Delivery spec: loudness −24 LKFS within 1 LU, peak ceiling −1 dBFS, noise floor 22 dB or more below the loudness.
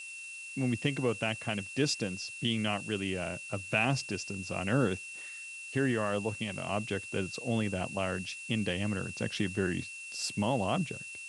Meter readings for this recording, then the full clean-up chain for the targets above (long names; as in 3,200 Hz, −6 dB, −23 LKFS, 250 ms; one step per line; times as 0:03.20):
interfering tone 2,700 Hz; level of the tone −42 dBFS; background noise floor −44 dBFS; target noise floor −55 dBFS; integrated loudness −33.0 LKFS; sample peak −14.0 dBFS; target loudness −24.0 LKFS
→ notch filter 2,700 Hz, Q 30
noise reduction from a noise print 11 dB
level +9 dB